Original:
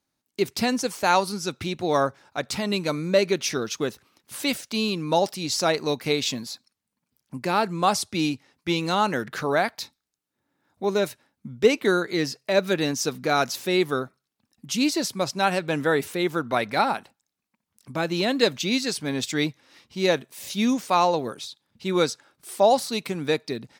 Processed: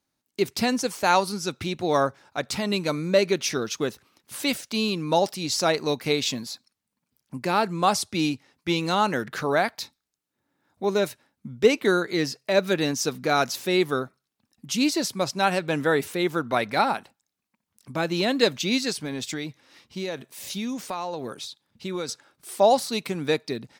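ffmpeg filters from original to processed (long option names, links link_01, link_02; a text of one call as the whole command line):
ffmpeg -i in.wav -filter_complex "[0:a]asettb=1/sr,asplit=3[link_01][link_02][link_03];[link_01]atrim=end=18.924[link_04];[link_02]atrim=start=18.92:end=22.09,asetpts=PTS-STARTPTS,afade=type=in:duration=0.004:curve=qsin,afade=type=out:start_time=3.166:duration=0.004:curve=qsin,acompressor=threshold=-27dB:ratio=6:attack=3.2:release=140:knee=1:detection=peak[link_05];[link_03]atrim=start=22.086[link_06];[link_04][link_05]acrossfade=duration=0.004:curve1=hsin:curve2=qsin[link_07];[link_07][link_06]acrossfade=duration=0.004:curve1=qsin:curve2=hsin" out.wav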